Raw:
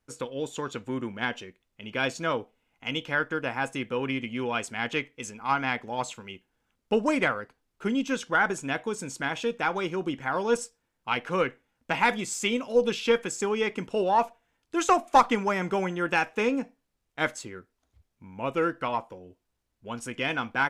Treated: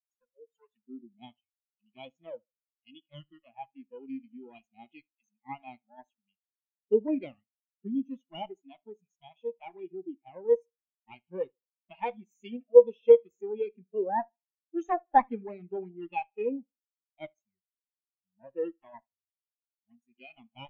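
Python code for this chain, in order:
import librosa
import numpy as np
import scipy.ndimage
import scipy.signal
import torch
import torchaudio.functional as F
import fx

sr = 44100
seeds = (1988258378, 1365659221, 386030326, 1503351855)

p1 = fx.lower_of_two(x, sr, delay_ms=0.32)
p2 = fx.noise_reduce_blind(p1, sr, reduce_db=25)
p3 = fx.low_shelf(p2, sr, hz=130.0, db=-9.0)
p4 = p3 + fx.echo_feedback(p3, sr, ms=75, feedback_pct=39, wet_db=-16.5, dry=0)
p5 = fx.spectral_expand(p4, sr, expansion=2.5)
y = p5 * 10.0 ** (3.5 / 20.0)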